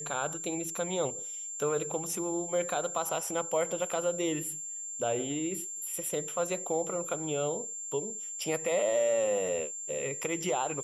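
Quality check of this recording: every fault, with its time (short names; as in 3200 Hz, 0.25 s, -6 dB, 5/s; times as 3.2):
tone 7300 Hz -37 dBFS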